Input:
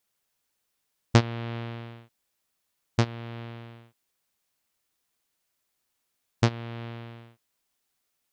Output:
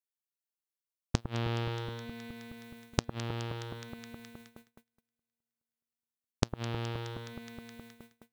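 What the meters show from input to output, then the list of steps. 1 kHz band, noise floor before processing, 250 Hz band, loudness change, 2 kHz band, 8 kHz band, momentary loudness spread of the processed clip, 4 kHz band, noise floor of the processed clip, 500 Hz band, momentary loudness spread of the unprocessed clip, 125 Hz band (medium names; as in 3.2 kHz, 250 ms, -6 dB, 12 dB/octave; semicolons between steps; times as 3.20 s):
-5.0 dB, -79 dBFS, -6.0 dB, -8.5 dB, -5.0 dB, -0.5 dB, 17 LU, -3.0 dB, under -85 dBFS, -4.5 dB, 20 LU, -6.5 dB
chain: inverted gate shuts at -14 dBFS, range -31 dB; treble shelf 4.2 kHz +9 dB; on a send: echo whose repeats swap between lows and highs 105 ms, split 1.4 kHz, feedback 85%, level -10 dB; on the sum: gate -57 dBFS, range -32 dB; dynamic bell 2.1 kHz, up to -4 dB, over -55 dBFS, Q 2.4; in parallel at -1.5 dB: compression, threshold -47 dBFS, peak gain reduction 23 dB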